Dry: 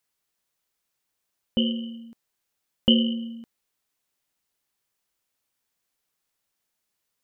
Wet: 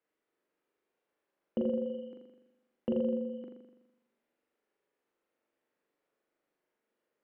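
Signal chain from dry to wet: three-band isolator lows -20 dB, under 250 Hz, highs -22 dB, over 2.3 kHz; low-pass that closes with the level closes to 600 Hz, closed at -30 dBFS; resonant low shelf 630 Hz +7 dB, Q 1.5; peak limiter -22 dBFS, peak gain reduction 13 dB; flutter echo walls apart 7.1 m, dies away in 1 s; trim -1 dB

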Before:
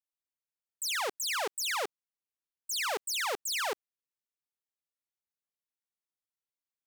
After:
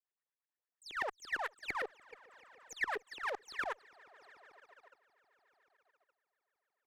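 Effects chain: LFO band-pass saw up 8.8 Hz 360–2000 Hz; on a send: multi-head delay 146 ms, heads second and third, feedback 60%, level -22 dB; on the sum: level held to a coarse grid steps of 14 dB; Chebyshev shaper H 4 -19 dB, 6 -16 dB, 8 -20 dB, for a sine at -32 dBFS; in parallel at 0 dB: compression, threshold -55 dBFS, peak gain reduction 15.5 dB; on the sum: peaking EQ 1.8 kHz +8.5 dB 0.23 oct; trim +2.5 dB

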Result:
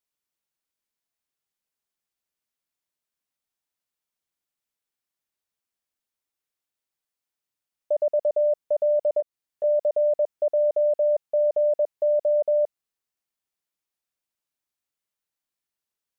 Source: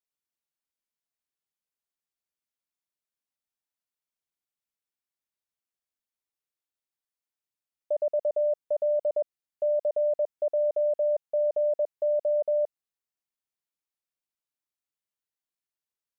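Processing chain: 9.20–9.64 s: compression 2.5:1, threshold -35 dBFS, peak gain reduction 7 dB; trim +4 dB

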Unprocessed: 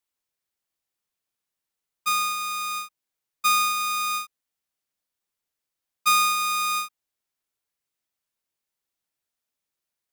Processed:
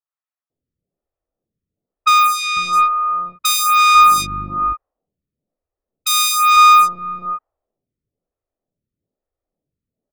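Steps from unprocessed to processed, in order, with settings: 2.27–2.73 s: treble shelf 4.1 kHz -7.5 dB; level-controlled noise filter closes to 380 Hz, open at -23 dBFS; comb 1.6 ms, depth 32%; 3.45–4.22 s: mains buzz 50 Hz, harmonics 7, -43 dBFS -5 dB/octave; saturation -25 dBFS, distortion -8 dB; bands offset in time highs, lows 500 ms, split 1.1 kHz; loudness maximiser +21.5 dB; lamp-driven phase shifter 1.1 Hz

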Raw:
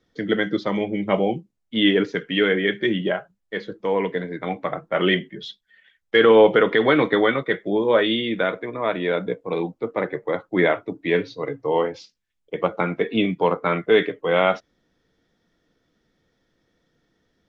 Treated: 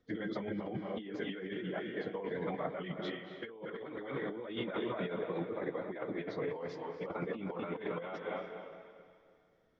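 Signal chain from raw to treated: echo that smears into a reverb 479 ms, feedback 40%, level -12 dB; plain phase-vocoder stretch 0.56×; treble shelf 2.5 kHz -8 dB; compressor with a negative ratio -31 dBFS, ratio -1; trim -8.5 dB

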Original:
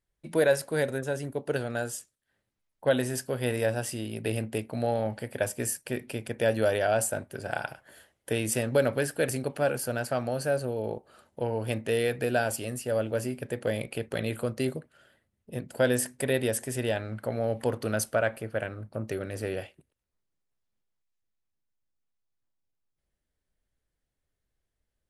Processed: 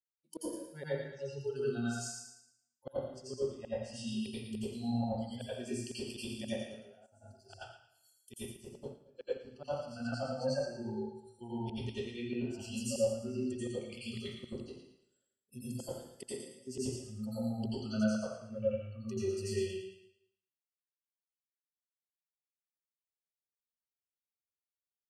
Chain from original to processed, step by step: high-pass 400 Hz 6 dB/octave; low-pass that closes with the level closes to 2.2 kHz, closed at -28 dBFS; spectral noise reduction 28 dB; high-order bell 1.3 kHz -13 dB 2.3 oct; tremolo saw down 1.2 Hz, depth 40%; inverted gate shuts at -32 dBFS, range -33 dB; feedback echo behind a high-pass 112 ms, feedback 35%, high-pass 1.7 kHz, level -6 dB; plate-style reverb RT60 0.73 s, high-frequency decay 0.75×, pre-delay 75 ms, DRR -9.5 dB; 7.06–9.68 s: upward expansion 1.5:1, over -53 dBFS

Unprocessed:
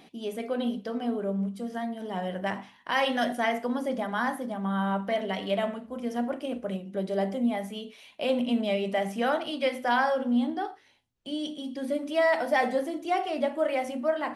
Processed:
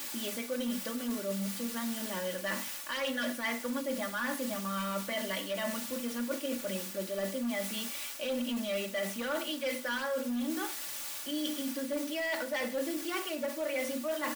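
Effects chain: peaking EQ 780 Hz -14.5 dB 0.35 oct; in parallel at -5.5 dB: word length cut 6-bit, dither triangular; on the sum: hard clipper -20.5 dBFS, distortion -15 dB; bass shelf 360 Hz -9 dB; comb 3.5 ms, depth 74%; reverse; compression, threshold -31 dBFS, peak gain reduction 10.5 dB; reverse; endings held to a fixed fall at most 130 dB/s

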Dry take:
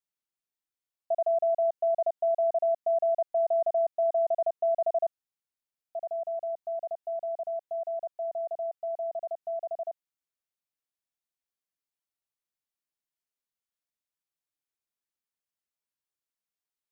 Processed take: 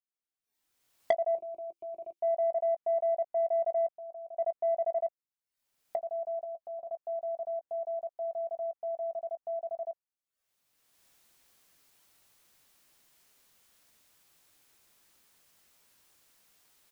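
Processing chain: recorder AGC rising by 26 dB/s; 6.44–6.91 s: band-stop 650 Hz, Q 13; spectral noise reduction 9 dB; 1.35–2.20 s: FFT filter 220 Hz 0 dB, 340 Hz +10 dB, 550 Hz -10 dB, 780 Hz -14 dB, 1.1 kHz -6 dB, 1.7 kHz -16 dB, 2.4 kHz +11 dB; 3.94–4.36 s: level held to a coarse grid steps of 20 dB; saturation -12.5 dBFS, distortion -13 dB; doubling 18 ms -13 dB; trim -4 dB

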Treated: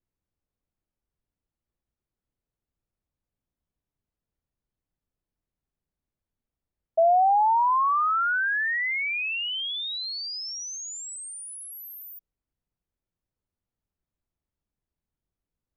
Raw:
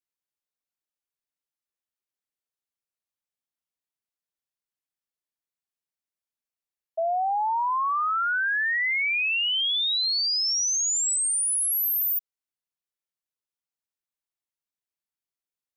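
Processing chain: tilt EQ -5.5 dB/octave; trim +3.5 dB

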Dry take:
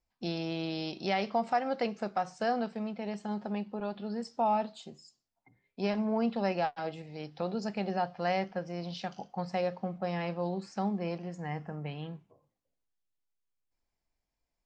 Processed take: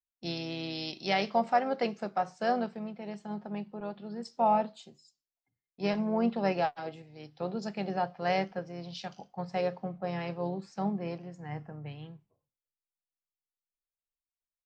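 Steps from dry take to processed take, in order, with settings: harmony voices -4 st -15 dB; three bands expanded up and down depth 70%

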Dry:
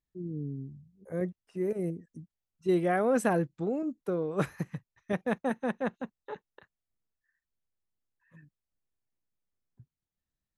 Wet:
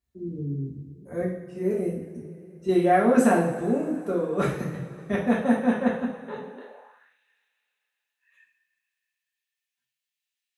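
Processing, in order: two-slope reverb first 0.55 s, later 3.5 s, from -18 dB, DRR -5 dB; high-pass sweep 73 Hz -> 2.6 kHz, 6.21–7.18 s

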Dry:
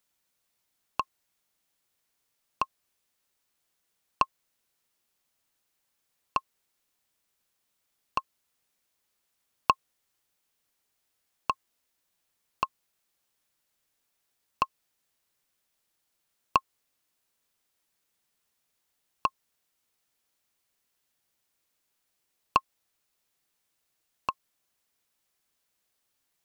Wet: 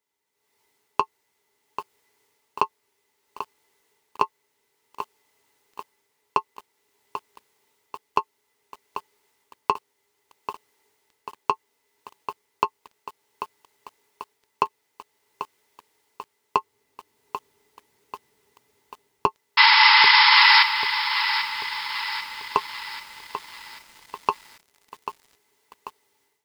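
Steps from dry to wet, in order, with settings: 16.56–19.26 s: bass shelf 340 Hz +10.5 dB; 19.57–20.63 s: painted sound noise 820–5400 Hz -20 dBFS; peak limiter -12.5 dBFS, peak gain reduction 7.5 dB; level rider gain up to 16 dB; high-pass 88 Hz 12 dB/octave; treble shelf 7.6 kHz -4 dB; comb of notches 180 Hz; small resonant body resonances 410/890/2000 Hz, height 17 dB, ringing for 65 ms; bit-crushed delay 790 ms, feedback 55%, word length 6-bit, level -9.5 dB; trim -4 dB

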